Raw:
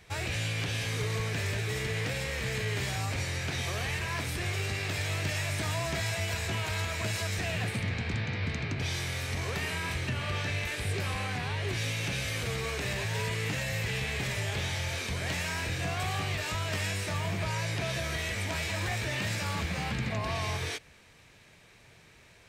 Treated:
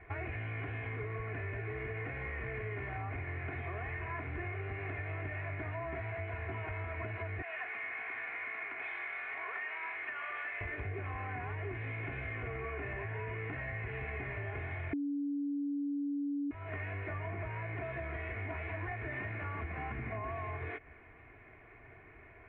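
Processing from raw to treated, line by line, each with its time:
7.42–10.61 s: high-pass 970 Hz
12.35–13.39 s: steep low-pass 3.7 kHz
14.93–16.51 s: bleep 285 Hz -16 dBFS
whole clip: elliptic low-pass 2.2 kHz, stop band 60 dB; comb 2.8 ms, depth 68%; compression, threshold -39 dBFS; trim +2 dB

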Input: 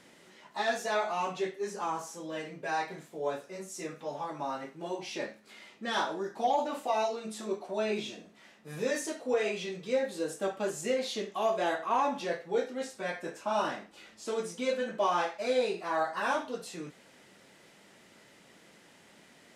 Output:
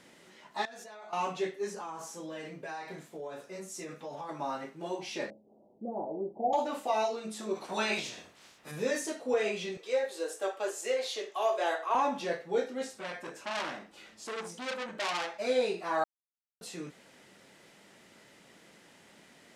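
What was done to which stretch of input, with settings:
0.65–1.13 s: level held to a coarse grid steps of 24 dB
1.72–4.29 s: compression, threshold -37 dBFS
5.30–6.53 s: steep low-pass 770 Hz 48 dB/octave
7.55–8.70 s: spectral peaks clipped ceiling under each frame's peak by 19 dB
9.77–11.95 s: high-pass 390 Hz 24 dB/octave
12.94–15.34 s: transformer saturation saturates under 3.7 kHz
16.04–16.61 s: mute

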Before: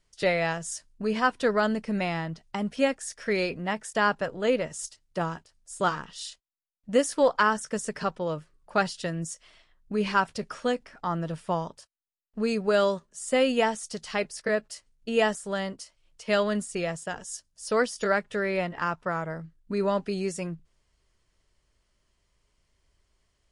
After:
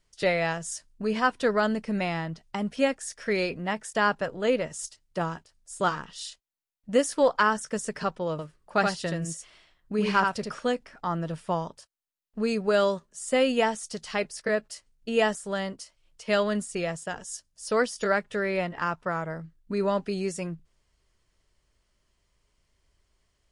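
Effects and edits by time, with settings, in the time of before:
8.31–10.59 s: delay 77 ms -4 dB

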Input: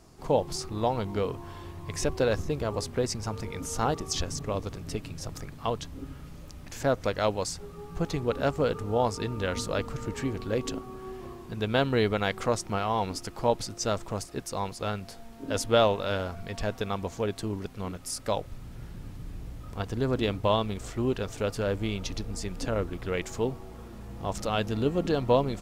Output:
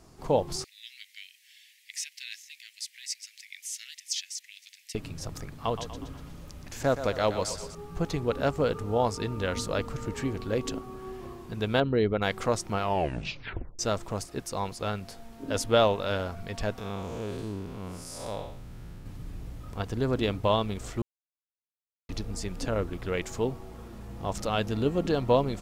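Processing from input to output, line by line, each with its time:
0.64–4.95 s: steep high-pass 1.9 kHz 72 dB/octave
5.52–7.75 s: thinning echo 121 ms, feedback 55%, high-pass 260 Hz, level -10 dB
11.80–12.22 s: resonances exaggerated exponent 1.5
12.81 s: tape stop 0.98 s
16.78–19.06 s: spectral blur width 214 ms
21.02–22.09 s: mute

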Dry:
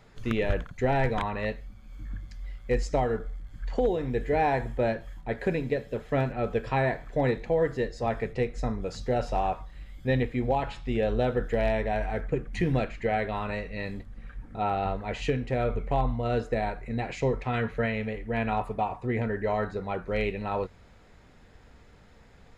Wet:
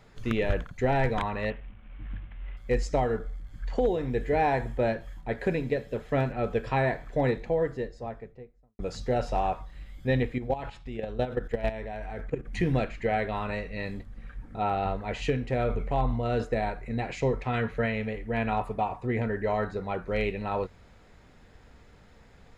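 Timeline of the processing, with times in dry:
1.50–2.57 s: CVSD coder 16 kbps
7.15–8.79 s: studio fade out
10.38–12.45 s: level held to a coarse grid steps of 12 dB
15.59–16.45 s: transient shaper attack -3 dB, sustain +4 dB

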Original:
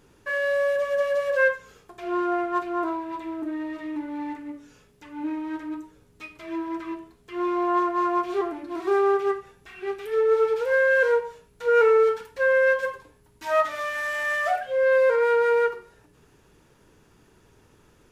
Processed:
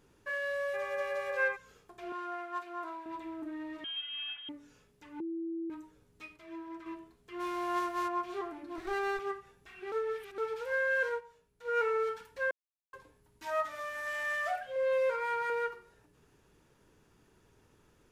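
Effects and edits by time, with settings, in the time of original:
0.73–1.55 s: mains buzz 400 Hz, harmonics 6, -33 dBFS -3 dB/octave
2.12–3.06 s: high-pass 1 kHz 6 dB/octave
3.84–4.49 s: frequency inversion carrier 3.5 kHz
5.20–5.70 s: bleep 331 Hz -22 dBFS
6.36–6.86 s: gain -5 dB
7.39–8.07 s: formants flattened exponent 0.6
8.78–9.19 s: comb filter that takes the minimum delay 0.49 ms
9.92–10.38 s: reverse
11.09–11.94 s: upward expansion, over -32 dBFS
12.51–12.93 s: mute
13.50–14.07 s: peaking EQ 3 kHz -4.5 dB 1.9 oct
14.75–15.50 s: comb 7.3 ms
whole clip: dynamic bell 440 Hz, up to -6 dB, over -35 dBFS, Q 1.2; trim -8 dB

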